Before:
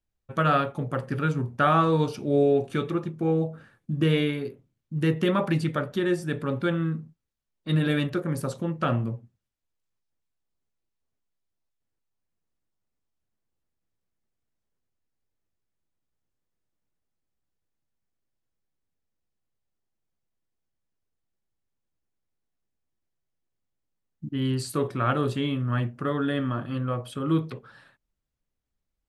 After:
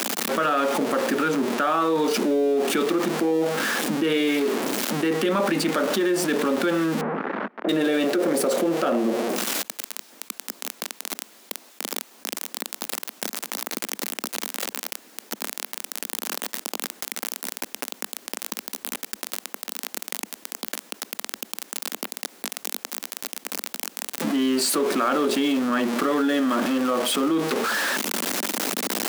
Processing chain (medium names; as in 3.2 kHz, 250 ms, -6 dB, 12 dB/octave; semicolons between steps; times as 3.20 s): jump at every zero crossing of -31.5 dBFS; 7.01–7.69 s: low-pass 1.7 kHz 24 dB/octave; 7.64–9.35 s: time-frequency box 320–790 Hz +6 dB; steep high-pass 210 Hz 48 dB/octave; peak limiter -18.5 dBFS, peak gain reduction 9.5 dB; level flattener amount 70%; trim +2.5 dB